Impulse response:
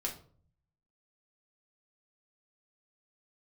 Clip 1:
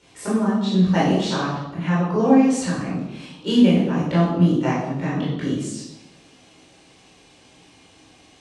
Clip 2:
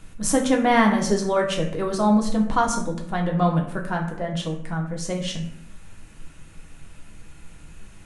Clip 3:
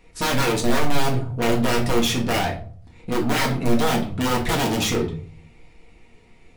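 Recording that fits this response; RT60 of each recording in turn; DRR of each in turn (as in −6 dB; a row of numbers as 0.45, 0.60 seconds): 3; 0.95, 0.65, 0.50 seconds; −8.5, −0.5, −1.5 decibels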